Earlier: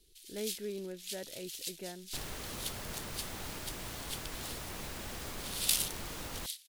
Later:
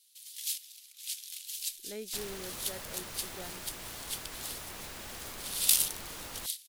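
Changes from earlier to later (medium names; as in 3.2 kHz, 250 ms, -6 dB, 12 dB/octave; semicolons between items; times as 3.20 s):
speech: entry +1.55 s; first sound: add treble shelf 6 kHz +8 dB; master: add bass shelf 420 Hz -6 dB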